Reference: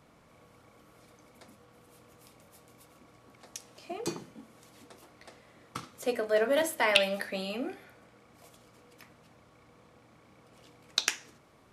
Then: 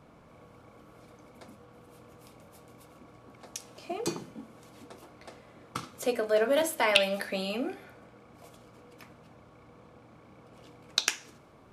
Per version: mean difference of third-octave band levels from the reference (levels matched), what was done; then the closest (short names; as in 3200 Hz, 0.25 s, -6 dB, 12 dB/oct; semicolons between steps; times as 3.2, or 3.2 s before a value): 2.5 dB: notch 1900 Hz, Q 12; in parallel at -1 dB: compressor, threshold -40 dBFS, peak gain reduction 21.5 dB; on the sum: mismatched tape noise reduction decoder only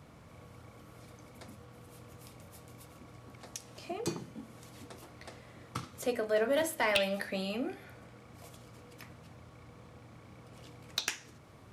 5.5 dB: bell 94 Hz +10 dB 1.5 oct; in parallel at +0.5 dB: compressor, threshold -44 dBFS, peak gain reduction 25 dB; on the sum: soft clip -14 dBFS, distortion -16 dB; gain -3.5 dB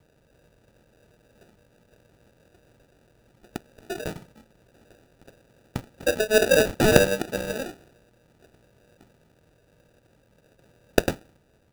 9.0 dB: G.711 law mismatch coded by A; comb 1.6 ms, depth 70%; sample-and-hold 41×; gain +5.5 dB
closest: first